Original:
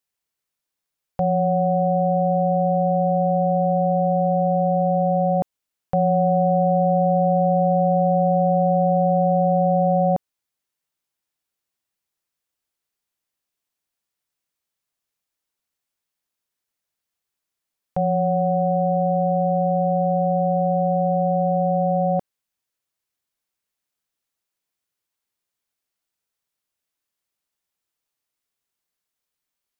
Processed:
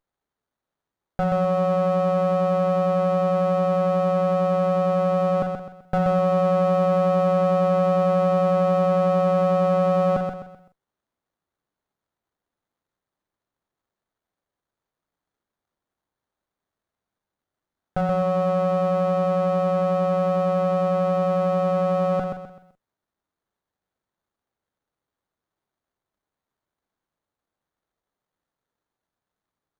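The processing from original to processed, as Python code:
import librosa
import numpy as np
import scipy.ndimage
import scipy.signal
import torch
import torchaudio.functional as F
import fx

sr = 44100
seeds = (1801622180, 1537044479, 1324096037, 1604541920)

y = fx.notch(x, sr, hz=480.0, q=12.0)
y = fx.doubler(y, sr, ms=44.0, db=-11)
y = fx.echo_feedback(y, sr, ms=128, feedback_pct=36, wet_db=-5)
y = fx.running_max(y, sr, window=17)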